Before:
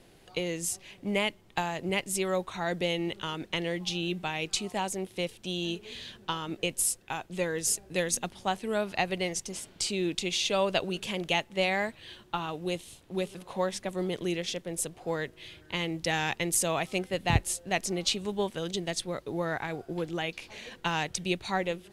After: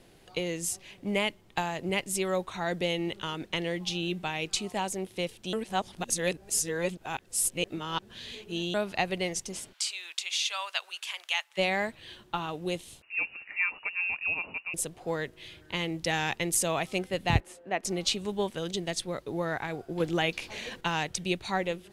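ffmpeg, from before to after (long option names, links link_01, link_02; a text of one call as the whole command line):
ffmpeg -i in.wav -filter_complex "[0:a]asplit=3[link_01][link_02][link_03];[link_01]afade=type=out:start_time=9.72:duration=0.02[link_04];[link_02]highpass=frequency=1000:width=0.5412,highpass=frequency=1000:width=1.3066,afade=type=in:start_time=9.72:duration=0.02,afade=type=out:start_time=11.57:duration=0.02[link_05];[link_03]afade=type=in:start_time=11.57:duration=0.02[link_06];[link_04][link_05][link_06]amix=inputs=3:normalize=0,asettb=1/sr,asplit=3[link_07][link_08][link_09];[link_07]atrim=end=13.024[link_10];[link_08]atrim=start=13.02:end=14.74,asetpts=PTS-STARTPTS,afade=type=in:duration=0.004:curve=qsin,afade=type=out:start_time=1.716:duration=0.004:curve=qsin,lowpass=frequency=2500:width_type=q:width=0.5098,lowpass=frequency=2500:width_type=q:width=0.6013,lowpass=frequency=2500:width_type=q:width=0.9,lowpass=frequency=2500:width_type=q:width=2.563,afreqshift=-2900[link_11];[link_09]atrim=start=14.736[link_12];[link_10][link_11]acrossfade=duration=0.004:curve1=hsin:curve2=qsin[link_13];[link_13][link_12]acrossfade=duration=0.004:curve1=qsin:curve2=hsin,asettb=1/sr,asplit=3[link_14][link_15][link_16];[link_14]atrim=end=17.404[link_17];[link_15]atrim=start=17.4:end=17.85,asetpts=PTS-STARTPTS,afade=type=in:duration=0.004:curve=qsin,afade=type=out:start_time=0.446:duration=0.004:curve=qsin,acrossover=split=210 2400:gain=0.112 1 0.112[link_18][link_19][link_20];[link_18][link_19][link_20]amix=inputs=3:normalize=0[link_21];[link_16]atrim=start=17.846[link_22];[link_17][link_21]acrossfade=duration=0.004:curve1=hsin:curve2=qsin[link_23];[link_23][link_22]acrossfade=duration=0.004:curve1=qsin:curve2=hsin,asettb=1/sr,asplit=3[link_24][link_25][link_26];[link_24]atrim=end=20.004[link_27];[link_25]atrim=start=20:end=20.81,asetpts=PTS-STARTPTS,afade=type=in:duration=0.004:curve=qsin,afade=type=out:start_time=0.806:duration=0.004:curve=qsin,acontrast=30[link_28];[link_26]atrim=start=20.806[link_29];[link_27][link_28]acrossfade=duration=0.004:curve1=hsin:curve2=qsin[link_30];[link_30][link_29]acrossfade=duration=0.004:curve1=qsin:curve2=hsin,asplit=3[link_31][link_32][link_33];[link_31]atrim=end=5.532[link_34];[link_32]atrim=start=5.528:end=8.742,asetpts=PTS-STARTPTS,areverse[link_35];[link_33]atrim=start=8.738[link_36];[link_34][link_35]acrossfade=duration=0.004:curve1=hsin:curve2=hsin[link_37];[link_37][link_36]acrossfade=duration=0.004:curve1=hsin:curve2=hsin" out.wav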